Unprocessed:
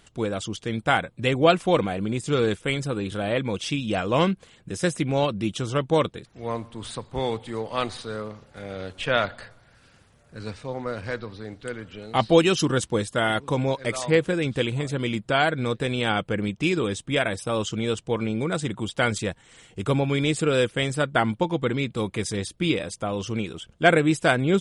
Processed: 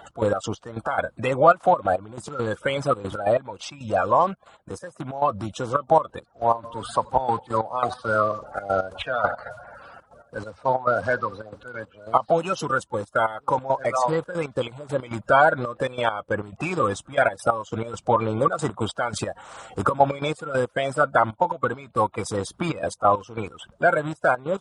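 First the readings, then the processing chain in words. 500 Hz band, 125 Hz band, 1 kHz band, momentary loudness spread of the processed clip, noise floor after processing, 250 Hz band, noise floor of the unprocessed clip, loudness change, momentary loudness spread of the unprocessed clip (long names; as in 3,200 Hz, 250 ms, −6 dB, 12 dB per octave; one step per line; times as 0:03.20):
+1.5 dB, −4.5 dB, +7.0 dB, 14 LU, −59 dBFS, −6.0 dB, −58 dBFS, +1.0 dB, 14 LU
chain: spectral magnitudes quantised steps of 30 dB
in parallel at −2 dB: brickwall limiter −16 dBFS, peak gain reduction 11 dB
on the sum: downward compressor 2.5 to 1, threshold −21 dBFS, peak gain reduction 8 dB
low-shelf EQ 100 Hz +6 dB
gate pattern "x.x.x..x.xxxx" 138 BPM −12 dB
high-pass filter 44 Hz
flat-topped bell 880 Hz +16 dB
speech leveller 2 s
level −7.5 dB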